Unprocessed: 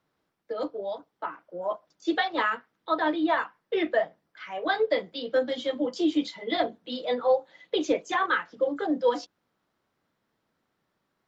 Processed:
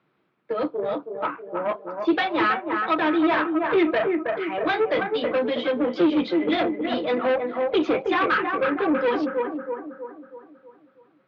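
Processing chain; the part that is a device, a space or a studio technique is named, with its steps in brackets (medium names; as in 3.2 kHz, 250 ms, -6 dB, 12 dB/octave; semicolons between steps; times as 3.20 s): analogue delay pedal into a guitar amplifier (bucket-brigade echo 321 ms, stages 4096, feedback 48%, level -6.5 dB; valve stage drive 25 dB, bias 0.35; cabinet simulation 82–3800 Hz, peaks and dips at 86 Hz -7 dB, 140 Hz +5 dB, 210 Hz +5 dB, 360 Hz +7 dB, 1.3 kHz +4 dB, 2.4 kHz +6 dB); trim +6 dB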